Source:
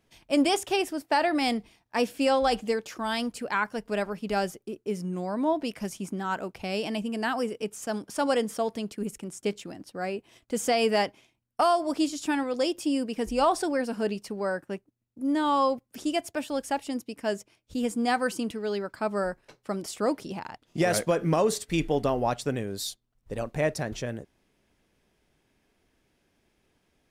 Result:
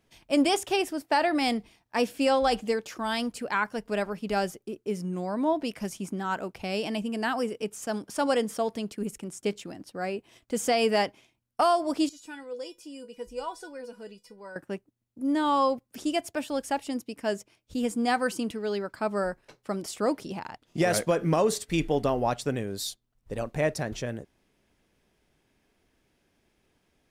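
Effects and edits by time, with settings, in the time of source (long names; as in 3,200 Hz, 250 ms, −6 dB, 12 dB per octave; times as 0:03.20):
0:12.09–0:14.56: tuned comb filter 490 Hz, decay 0.15 s, mix 90%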